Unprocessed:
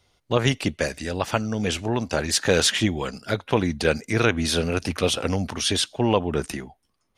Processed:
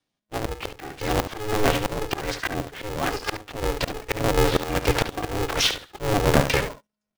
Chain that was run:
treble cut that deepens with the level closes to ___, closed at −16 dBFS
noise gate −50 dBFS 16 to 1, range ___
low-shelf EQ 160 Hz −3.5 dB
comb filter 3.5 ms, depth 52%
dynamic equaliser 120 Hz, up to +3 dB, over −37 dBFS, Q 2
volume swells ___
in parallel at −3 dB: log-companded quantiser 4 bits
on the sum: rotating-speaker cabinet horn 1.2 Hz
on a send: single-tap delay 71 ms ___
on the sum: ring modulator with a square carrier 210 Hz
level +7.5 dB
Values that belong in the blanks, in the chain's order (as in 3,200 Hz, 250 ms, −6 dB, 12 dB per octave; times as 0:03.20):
460 Hz, −20 dB, 502 ms, −10.5 dB